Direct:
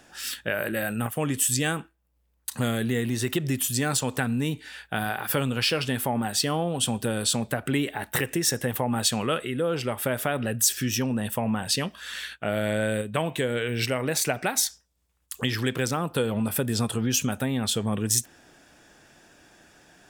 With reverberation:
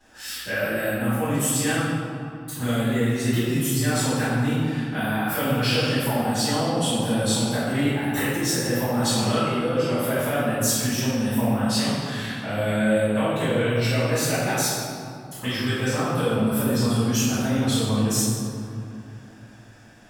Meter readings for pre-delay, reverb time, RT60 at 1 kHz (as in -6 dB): 3 ms, 2.7 s, 2.7 s